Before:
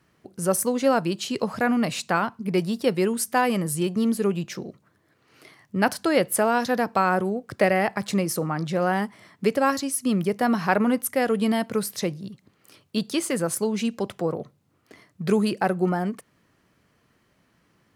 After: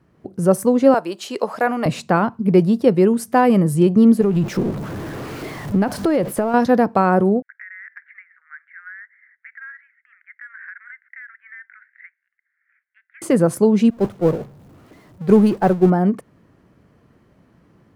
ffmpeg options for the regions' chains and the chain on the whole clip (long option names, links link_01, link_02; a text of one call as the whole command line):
ffmpeg -i in.wav -filter_complex "[0:a]asettb=1/sr,asplit=3[link_01][link_02][link_03];[link_01]atrim=end=0.944[link_04];[link_02]atrim=start=0.94:end=1.86,asetpts=PTS-STARTPTS,afade=type=in:duration=0.004:curve=qsin,afade=type=out:start_time=0.916:duration=0.004:curve=qsin,highpass=560,highshelf=frequency=8100:gain=5.5[link_05];[link_03]atrim=start=1.856[link_06];[link_04][link_05]acrossfade=duration=0.004:curve1=hsin:curve2=qsin[link_07];[link_07][link_06]acrossfade=duration=0.004:curve1=qsin:curve2=hsin,asettb=1/sr,asplit=3[link_08][link_09][link_10];[link_08]atrim=end=4.214[link_11];[link_09]atrim=start=4.21:end=6.54,asetpts=PTS-STARTPTS,afade=type=in:duration=0.004:curve=qsin,afade=type=out:start_time=2.326:duration=0.004:curve=qsin,aeval=exprs='val(0)+0.5*0.0237*sgn(val(0))':channel_layout=same,acompressor=threshold=-24dB:ratio=6:attack=3.2:release=140:knee=1:detection=peak[link_12];[link_10]atrim=start=6.536[link_13];[link_11][link_12]acrossfade=duration=0.004:curve1=hsin:curve2=qsin[link_14];[link_14][link_13]acrossfade=duration=0.004:curve1=qsin:curve2=hsin,asettb=1/sr,asplit=3[link_15][link_16][link_17];[link_15]atrim=end=7.424[link_18];[link_16]atrim=start=7.42:end=13.22,asetpts=PTS-STARTPTS,afade=type=in:duration=0.004:curve=qsin,afade=type=out:start_time=5.796:duration=0.004:curve=qsin,asuperpass=centerf=1800:order=8:qfactor=2.7,acompressor=threshold=-35dB:ratio=12:attack=3.2:release=140:knee=1:detection=peak[link_19];[link_17]atrim=start=13.216[link_20];[link_18][link_19]acrossfade=duration=0.004:curve1=hsin:curve2=qsin[link_21];[link_21][link_20]acrossfade=duration=0.004:curve1=qsin:curve2=hsin,asettb=1/sr,asplit=3[link_22][link_23][link_24];[link_22]atrim=end=13.904[link_25];[link_23]atrim=start=13.9:end=15.9,asetpts=PTS-STARTPTS,afade=type=in:duration=0.004:curve=qsin,afade=type=out:start_time=1.996:duration=0.004:curve=qsin,aeval=exprs='val(0)+0.5*0.0562*sgn(val(0))':channel_layout=same,agate=range=-33dB:threshold=-18dB:ratio=3:release=100:detection=peak[link_26];[link_24]atrim=start=15.896[link_27];[link_25][link_26]acrossfade=duration=0.004:curve1=hsin:curve2=qsin[link_28];[link_28][link_27]acrossfade=duration=0.004:curve1=qsin:curve2=hsin,tiltshelf=frequency=1300:gain=8,dynaudnorm=framelen=130:gausssize=3:maxgain=4.5dB" out.wav